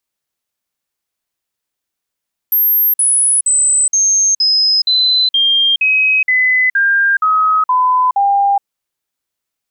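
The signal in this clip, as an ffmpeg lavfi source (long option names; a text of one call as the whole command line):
ffmpeg -f lavfi -i "aevalsrc='0.355*clip(min(mod(t,0.47),0.42-mod(t,0.47))/0.005,0,1)*sin(2*PI*12800*pow(2,-floor(t/0.47)/3)*mod(t,0.47))':duration=6.11:sample_rate=44100" out.wav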